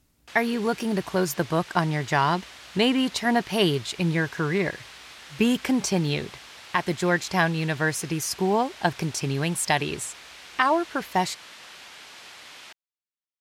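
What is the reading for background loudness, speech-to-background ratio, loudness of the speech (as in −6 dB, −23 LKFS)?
−43.0 LKFS, 18.0 dB, −25.0 LKFS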